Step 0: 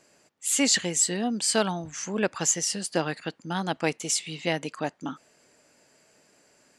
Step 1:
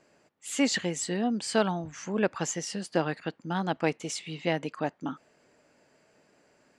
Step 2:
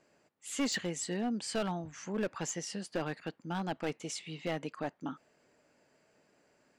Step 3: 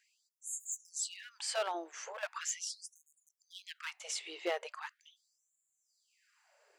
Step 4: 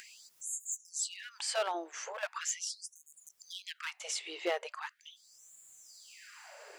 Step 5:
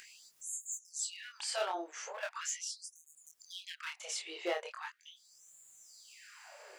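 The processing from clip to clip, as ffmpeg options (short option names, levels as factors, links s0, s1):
-af "aemphasis=mode=reproduction:type=75kf"
-af "asoftclip=type=hard:threshold=0.0794,volume=0.562"
-af "afftfilt=real='re*gte(b*sr/1024,320*pow(6600/320,0.5+0.5*sin(2*PI*0.4*pts/sr)))':imag='im*gte(b*sr/1024,320*pow(6600/320,0.5+0.5*sin(2*PI*0.4*pts/sr)))':win_size=1024:overlap=0.75,volume=1.26"
-af "acompressor=mode=upward:threshold=0.01:ratio=2.5,volume=1.26"
-af "flanger=delay=22.5:depth=6.1:speed=0.38,volume=1.12"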